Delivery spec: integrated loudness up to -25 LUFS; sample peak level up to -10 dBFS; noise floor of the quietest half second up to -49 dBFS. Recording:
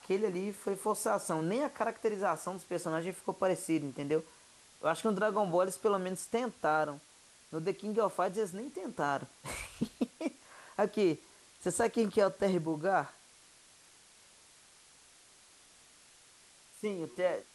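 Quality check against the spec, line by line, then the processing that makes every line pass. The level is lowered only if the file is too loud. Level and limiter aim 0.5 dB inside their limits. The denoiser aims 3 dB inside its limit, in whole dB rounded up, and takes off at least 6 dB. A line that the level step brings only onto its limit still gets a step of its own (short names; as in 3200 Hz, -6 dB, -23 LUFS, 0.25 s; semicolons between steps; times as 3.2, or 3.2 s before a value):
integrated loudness -34.0 LUFS: OK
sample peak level -16.0 dBFS: OK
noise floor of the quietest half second -61 dBFS: OK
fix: none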